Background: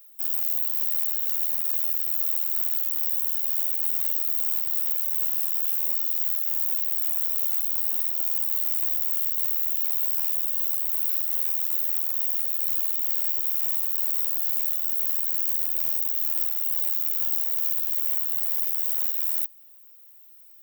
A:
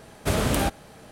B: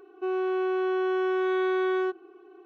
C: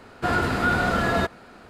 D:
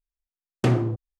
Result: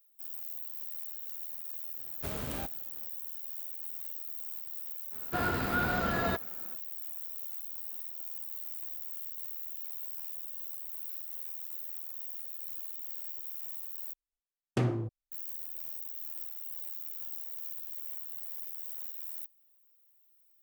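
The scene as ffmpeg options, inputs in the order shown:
ffmpeg -i bed.wav -i cue0.wav -i cue1.wav -i cue2.wav -i cue3.wav -filter_complex "[0:a]volume=-15.5dB,asplit=2[link_01][link_02];[link_01]atrim=end=14.134[link_03];[4:a]atrim=end=1.19,asetpts=PTS-STARTPTS,volume=-8.5dB[link_04];[link_02]atrim=start=15.316[link_05];[1:a]atrim=end=1.11,asetpts=PTS-STARTPTS,volume=-15.5dB,afade=type=in:duration=0.004:curve=hsin,afade=type=out:start_time=1.106:duration=0.004:curve=hsin,adelay=1970[link_06];[3:a]atrim=end=1.69,asetpts=PTS-STARTPTS,volume=-8.5dB,afade=type=in:duration=0.05,afade=type=out:start_time=1.64:duration=0.05,adelay=5100[link_07];[link_03][link_04]acrossfade=duration=0.004:curve1=hsin:curve2=hsin[link_08];[link_08][link_05]acrossfade=duration=0.004:curve1=hsin:curve2=hsin[link_09];[link_09][link_06][link_07]amix=inputs=3:normalize=0" out.wav

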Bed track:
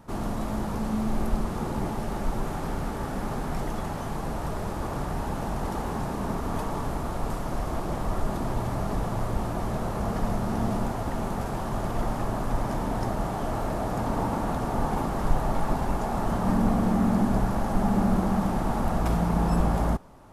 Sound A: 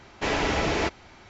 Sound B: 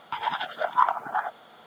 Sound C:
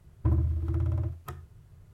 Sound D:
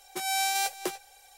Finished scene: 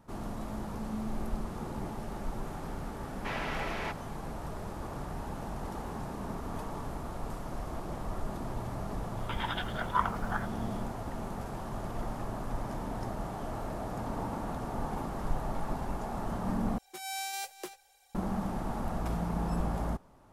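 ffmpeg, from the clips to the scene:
ffmpeg -i bed.wav -i cue0.wav -i cue1.wav -i cue2.wav -i cue3.wav -filter_complex "[0:a]volume=-8.5dB[link_01];[1:a]bandpass=frequency=1400:width_type=q:width=0.7:csg=0[link_02];[2:a]highpass=1300[link_03];[link_01]asplit=2[link_04][link_05];[link_04]atrim=end=16.784[link_06];[4:a]atrim=end=1.37,asetpts=PTS-STARTPTS,volume=-9.5dB[link_07];[link_05]atrim=start=18.146[link_08];[link_02]atrim=end=1.29,asetpts=PTS-STARTPTS,volume=-7.5dB,afade=type=in:duration=0.004:curve=hsin,afade=type=out:start_time=1.286:duration=0.004:curve=hsin,adelay=3030[link_09];[link_03]atrim=end=1.66,asetpts=PTS-STARTPTS,volume=-2.5dB,afade=type=in:duration=0.004:curve=hsin,afade=type=out:start_time=1.656:duration=0.004:curve=hsin,adelay=9170[link_10];[link_06][link_07]acrossfade=duration=0.004:curve1=hsin:curve2=hsin[link_11];[link_11][link_08]acrossfade=duration=0.004:curve1=hsin:curve2=hsin[link_12];[link_12][link_09][link_10]amix=inputs=3:normalize=0" out.wav

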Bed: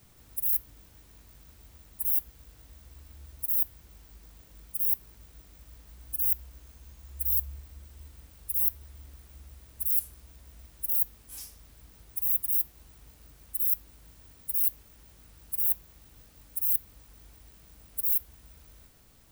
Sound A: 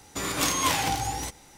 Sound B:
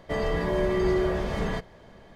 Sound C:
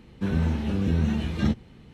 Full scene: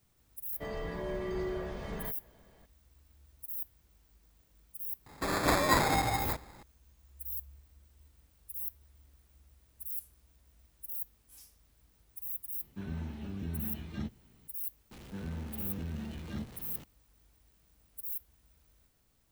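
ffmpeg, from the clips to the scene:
ffmpeg -i bed.wav -i cue0.wav -i cue1.wav -i cue2.wav -filter_complex "[3:a]asplit=2[link_01][link_02];[0:a]volume=-12.5dB[link_03];[1:a]acrusher=samples=15:mix=1:aa=0.000001[link_04];[link_01]bandreject=frequency=500:width=7.8[link_05];[link_02]aeval=exprs='val(0)+0.5*0.0376*sgn(val(0))':channel_layout=same[link_06];[2:a]atrim=end=2.15,asetpts=PTS-STARTPTS,volume=-11.5dB,afade=type=in:duration=0.004:curve=hsin,afade=type=out:start_time=2.146:duration=0.004:curve=hsin,adelay=510[link_07];[link_04]atrim=end=1.57,asetpts=PTS-STARTPTS,volume=-1.5dB,afade=type=in:duration=0.004:curve=hsin,afade=type=out:start_time=1.566:duration=0.004:curve=hsin,adelay=5060[link_08];[link_05]atrim=end=1.93,asetpts=PTS-STARTPTS,volume=-14.5dB,afade=type=in:duration=0.004:curve=hsin,afade=type=out:start_time=1.926:duration=0.004:curve=hsin,adelay=12550[link_09];[link_06]atrim=end=1.93,asetpts=PTS-STARTPTS,volume=-17dB,afade=type=in:duration=0.004:curve=hsin,afade=type=out:start_time=1.926:duration=0.004:curve=hsin,adelay=14910[link_10];[link_03][link_07][link_08][link_09][link_10]amix=inputs=5:normalize=0" out.wav

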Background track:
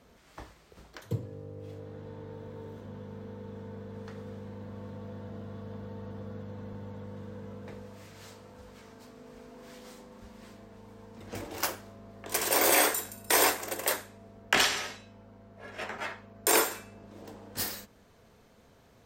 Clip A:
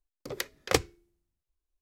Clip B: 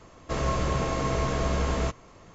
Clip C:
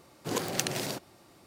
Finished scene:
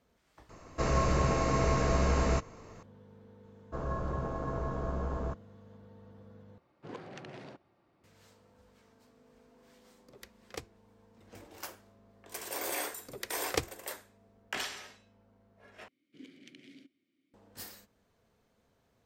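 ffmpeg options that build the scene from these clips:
ffmpeg -i bed.wav -i cue0.wav -i cue1.wav -i cue2.wav -filter_complex "[2:a]asplit=2[link_01][link_02];[3:a]asplit=2[link_03][link_04];[1:a]asplit=2[link_05][link_06];[0:a]volume=-12.5dB[link_07];[link_01]equalizer=frequency=3300:width=6.7:gain=-12[link_08];[link_02]afwtdn=0.0224[link_09];[link_03]lowpass=2300[link_10];[link_04]asplit=3[link_11][link_12][link_13];[link_11]bandpass=frequency=270:width_type=q:width=8,volume=0dB[link_14];[link_12]bandpass=frequency=2290:width_type=q:width=8,volume=-6dB[link_15];[link_13]bandpass=frequency=3010:width_type=q:width=8,volume=-9dB[link_16];[link_14][link_15][link_16]amix=inputs=3:normalize=0[link_17];[link_07]asplit=3[link_18][link_19][link_20];[link_18]atrim=end=6.584[link_21];[link_10]atrim=end=1.46,asetpts=PTS-STARTPTS,volume=-12dB[link_22];[link_19]atrim=start=8.036:end=15.884[link_23];[link_17]atrim=end=1.46,asetpts=PTS-STARTPTS,volume=-9dB[link_24];[link_20]atrim=start=17.336[link_25];[link_08]atrim=end=2.34,asetpts=PTS-STARTPTS,volume=-1dB,afade=type=in:duration=0.004:curve=hsin,afade=type=out:start_time=2.336:duration=0.004:curve=hsin,adelay=490[link_26];[link_09]atrim=end=2.34,asetpts=PTS-STARTPTS,volume=-8dB,afade=type=in:duration=0.004:curve=hsin,afade=type=out:start_time=2.336:duration=0.004:curve=hsin,adelay=3430[link_27];[link_05]atrim=end=1.81,asetpts=PTS-STARTPTS,volume=-18dB,afade=type=in:duration=0.004:curve=hsin,afade=type=out:start_time=1.806:duration=0.004:curve=hsin,adelay=9830[link_28];[link_06]atrim=end=1.81,asetpts=PTS-STARTPTS,volume=-7dB,afade=type=in:duration=0.004:curve=hsin,afade=type=out:start_time=1.806:duration=0.004:curve=hsin,adelay=12830[link_29];[link_21][link_22]acrossfade=duration=0.004:curve1=hsin:curve2=hsin[link_30];[link_30][link_23]acrossfade=duration=0.004:curve1=hsin:curve2=hsin[link_31];[link_31][link_24]acrossfade=duration=0.004:curve1=hsin:curve2=hsin[link_32];[link_32][link_25]acrossfade=duration=0.004:curve1=hsin:curve2=hsin[link_33];[link_33][link_26][link_27][link_28][link_29]amix=inputs=5:normalize=0" out.wav

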